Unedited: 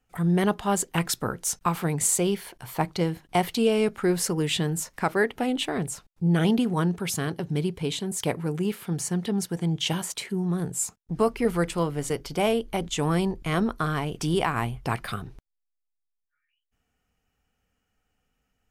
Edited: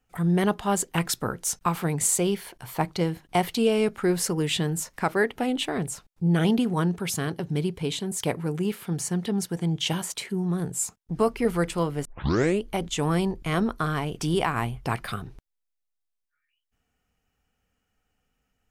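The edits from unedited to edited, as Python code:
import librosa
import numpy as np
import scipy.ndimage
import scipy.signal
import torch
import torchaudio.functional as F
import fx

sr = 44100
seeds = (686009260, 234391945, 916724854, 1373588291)

y = fx.edit(x, sr, fx.tape_start(start_s=12.05, length_s=0.58), tone=tone)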